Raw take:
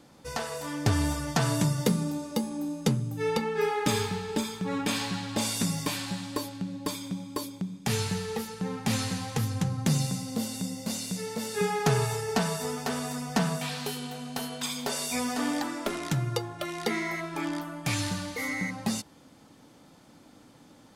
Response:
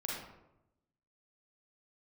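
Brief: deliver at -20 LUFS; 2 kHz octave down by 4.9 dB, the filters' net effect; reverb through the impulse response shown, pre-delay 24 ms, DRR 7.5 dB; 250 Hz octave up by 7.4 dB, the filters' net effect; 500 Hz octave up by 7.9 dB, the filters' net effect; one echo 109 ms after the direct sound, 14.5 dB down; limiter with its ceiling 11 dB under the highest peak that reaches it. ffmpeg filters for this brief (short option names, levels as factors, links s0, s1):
-filter_complex "[0:a]equalizer=f=250:t=o:g=7.5,equalizer=f=500:t=o:g=7.5,equalizer=f=2000:t=o:g=-6.5,alimiter=limit=0.168:level=0:latency=1,aecho=1:1:109:0.188,asplit=2[s0][s1];[1:a]atrim=start_sample=2205,adelay=24[s2];[s1][s2]afir=irnorm=-1:irlink=0,volume=0.335[s3];[s0][s3]amix=inputs=2:normalize=0,volume=2"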